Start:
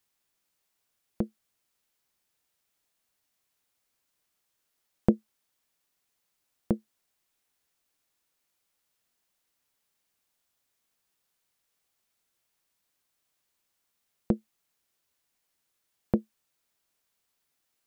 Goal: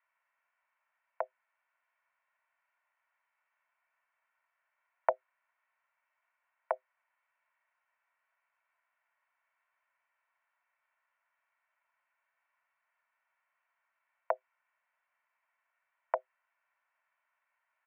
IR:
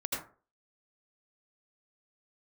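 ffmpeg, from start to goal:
-af "aecho=1:1:2.4:0.51,highpass=f=560:t=q:w=0.5412,highpass=f=560:t=q:w=1.307,lowpass=f=2100:t=q:w=0.5176,lowpass=f=2100:t=q:w=0.7071,lowpass=f=2100:t=q:w=1.932,afreqshift=170,volume=2.11"

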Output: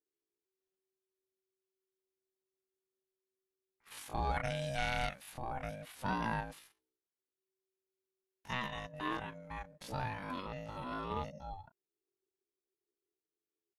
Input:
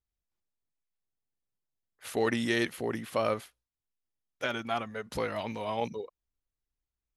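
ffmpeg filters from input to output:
-af "aeval=exprs='val(0)*sin(2*PI*380*n/s)':c=same,atempo=0.52,volume=0.631"

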